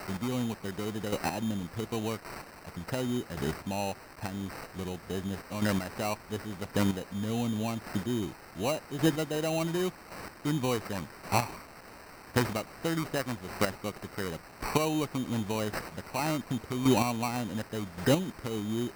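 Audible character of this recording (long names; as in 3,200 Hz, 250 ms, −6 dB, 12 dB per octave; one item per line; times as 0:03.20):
a quantiser's noise floor 8 bits, dither triangular
chopped level 0.89 Hz, depth 60%, duty 15%
aliases and images of a low sample rate 3,400 Hz, jitter 0%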